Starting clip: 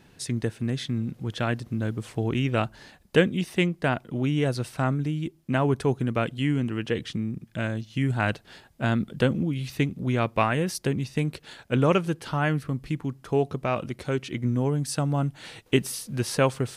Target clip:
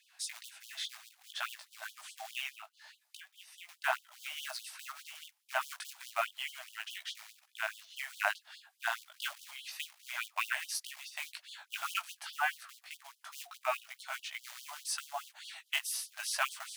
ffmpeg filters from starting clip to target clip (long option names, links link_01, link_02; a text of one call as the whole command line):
ffmpeg -i in.wav -filter_complex "[0:a]bandreject=frequency=66.57:width_type=h:width=4,bandreject=frequency=133.14:width_type=h:width=4,bandreject=frequency=199.71:width_type=h:width=4,asettb=1/sr,asplit=3[link_01][link_02][link_03];[link_01]atrim=end=2.504[link_04];[link_02]atrim=start=2.5:end=3.69,asetpts=PTS-STARTPTS,afade=type=in:duration=0.004:curve=qsin,afade=type=out:start_time=1.186:duration=0.004:curve=qsin,acompressor=threshold=-37dB:ratio=5[link_05];[link_03]atrim=start=3.686[link_06];[link_04][link_05]acrossfade=duration=0.004:curve1=hsin:curve2=qsin[link_07];[link_07][link_06]acrossfade=duration=0.004:curve1=qsin:curve2=hsin,flanger=delay=15.5:depth=3.9:speed=2,acrusher=bits=5:mode=log:mix=0:aa=0.000001,afftfilt=real='re*gte(b*sr/1024,590*pow(3000/590,0.5+0.5*sin(2*PI*4.8*pts/sr)))':imag='im*gte(b*sr/1024,590*pow(3000/590,0.5+0.5*sin(2*PI*4.8*pts/sr)))':win_size=1024:overlap=0.75" out.wav